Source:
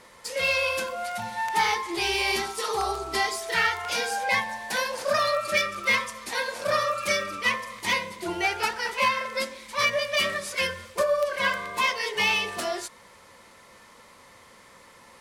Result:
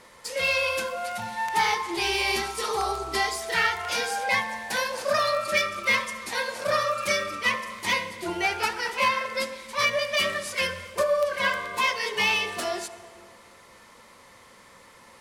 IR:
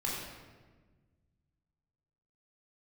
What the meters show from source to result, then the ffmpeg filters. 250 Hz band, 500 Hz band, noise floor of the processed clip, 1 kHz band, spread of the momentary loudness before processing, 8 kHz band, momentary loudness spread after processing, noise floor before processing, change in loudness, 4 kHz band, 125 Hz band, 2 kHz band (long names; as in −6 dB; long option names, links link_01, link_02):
0.0 dB, +0.5 dB, −52 dBFS, 0.0 dB, 7 LU, 0.0 dB, 7 LU, −53 dBFS, 0.0 dB, 0.0 dB, +0.5 dB, 0.0 dB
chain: -filter_complex "[0:a]asplit=2[link_01][link_02];[1:a]atrim=start_sample=2205,asetrate=26901,aresample=44100,adelay=73[link_03];[link_02][link_03]afir=irnorm=-1:irlink=0,volume=-22.5dB[link_04];[link_01][link_04]amix=inputs=2:normalize=0"